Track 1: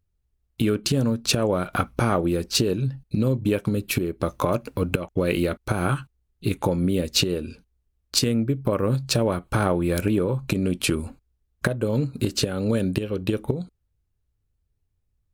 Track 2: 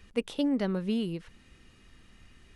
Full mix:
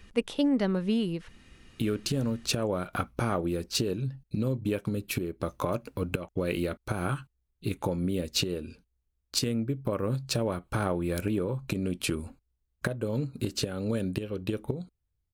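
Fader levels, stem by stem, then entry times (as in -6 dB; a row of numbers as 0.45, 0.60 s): -7.0, +2.5 dB; 1.20, 0.00 s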